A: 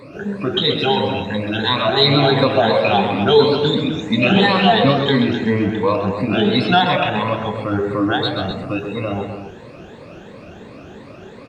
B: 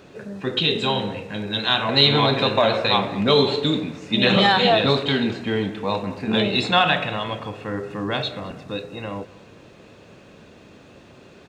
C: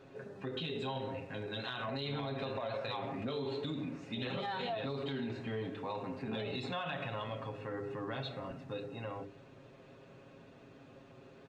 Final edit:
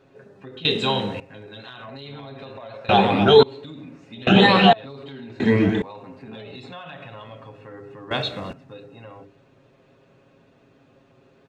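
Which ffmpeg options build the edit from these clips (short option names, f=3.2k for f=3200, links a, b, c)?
-filter_complex "[1:a]asplit=2[a][b];[0:a]asplit=3[c][d][e];[2:a]asplit=6[f][g][h][i][j][k];[f]atrim=end=0.652[l];[a]atrim=start=0.648:end=1.202[m];[g]atrim=start=1.198:end=2.892[n];[c]atrim=start=2.888:end=3.432[o];[h]atrim=start=3.428:end=4.272[p];[d]atrim=start=4.268:end=4.732[q];[i]atrim=start=4.728:end=5.402[r];[e]atrim=start=5.398:end=5.822[s];[j]atrim=start=5.818:end=8.112[t];[b]atrim=start=8.108:end=8.532[u];[k]atrim=start=8.528[v];[l][m]acrossfade=d=0.004:c1=hsin:c2=hsin[w];[w][n]acrossfade=d=0.004:c1=hsin:c2=hsin[x];[x][o]acrossfade=d=0.004:c1=hsin:c2=hsin[y];[y][p]acrossfade=d=0.004:c1=hsin:c2=hsin[z];[z][q]acrossfade=d=0.004:c1=hsin:c2=hsin[aa];[aa][r]acrossfade=d=0.004:c1=hsin:c2=hsin[ab];[ab][s]acrossfade=d=0.004:c1=hsin:c2=hsin[ac];[ac][t]acrossfade=d=0.004:c1=hsin:c2=hsin[ad];[ad][u]acrossfade=d=0.004:c1=hsin:c2=hsin[ae];[ae][v]acrossfade=d=0.004:c1=hsin:c2=hsin"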